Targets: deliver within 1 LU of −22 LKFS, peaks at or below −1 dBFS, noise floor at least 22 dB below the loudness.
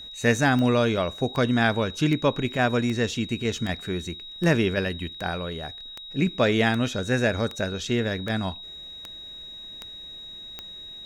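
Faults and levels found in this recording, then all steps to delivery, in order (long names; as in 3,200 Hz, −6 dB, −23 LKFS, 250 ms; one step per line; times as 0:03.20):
number of clicks 14; interfering tone 3,800 Hz; level of the tone −38 dBFS; integrated loudness −25.0 LKFS; sample peak −7.5 dBFS; target loudness −22.0 LKFS
→ click removal
notch filter 3,800 Hz, Q 30
level +3 dB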